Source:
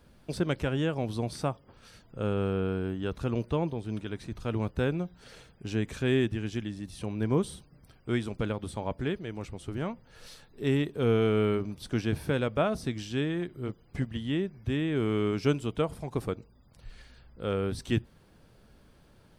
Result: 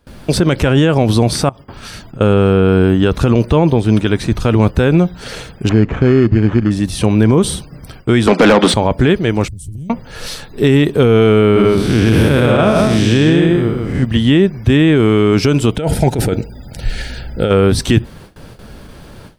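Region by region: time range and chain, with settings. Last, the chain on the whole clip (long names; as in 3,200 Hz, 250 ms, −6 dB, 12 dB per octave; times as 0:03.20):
0:01.49–0:02.21: notch filter 500 Hz, Q 5.8 + downward compressor 16 to 1, threshold −48 dBFS
0:05.69–0:06.71: sample-rate reduction 4,700 Hz + head-to-tape spacing loss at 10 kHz 38 dB
0:08.27–0:08.74: Chebyshev high-pass filter 170 Hz, order 6 + high-frequency loss of the air 55 metres + mid-hump overdrive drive 25 dB, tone 3,400 Hz, clips at −20 dBFS
0:09.48–0:09.90: Chebyshev band-stop filter 110–9,400 Hz + downward compressor 4 to 1, threshold −49 dBFS
0:11.41–0:14.03: spectrum smeared in time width 189 ms + single-tap delay 151 ms −4 dB
0:15.77–0:17.51: Butterworth band-reject 1,100 Hz, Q 3 + compressor whose output falls as the input rises −36 dBFS
whole clip: noise gate with hold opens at −49 dBFS; boost into a limiter +24 dB; level −1 dB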